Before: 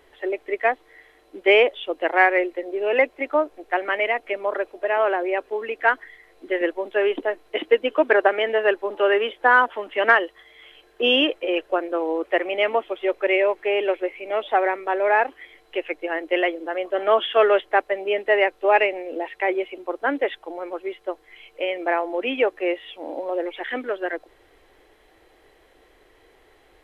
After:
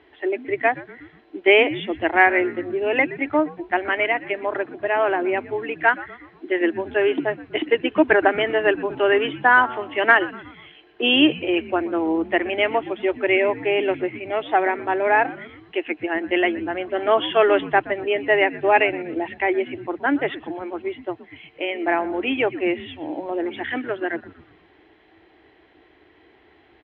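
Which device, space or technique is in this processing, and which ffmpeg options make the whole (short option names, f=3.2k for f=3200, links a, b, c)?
frequency-shifting delay pedal into a guitar cabinet: -filter_complex "[0:a]asplit=5[a][b][c][d][e];[b]adelay=121,afreqshift=-130,volume=-18dB[f];[c]adelay=242,afreqshift=-260,volume=-24.6dB[g];[d]adelay=363,afreqshift=-390,volume=-31.1dB[h];[e]adelay=484,afreqshift=-520,volume=-37.7dB[i];[a][f][g][h][i]amix=inputs=5:normalize=0,highpass=90,equalizer=f=310:t=q:w=4:g=7,equalizer=f=520:t=q:w=4:g=-10,equalizer=f=1.2k:t=q:w=4:g=-4,lowpass=f=3.5k:w=0.5412,lowpass=f=3.5k:w=1.3066,equalizer=f=79:w=2.4:g=6,volume=2.5dB"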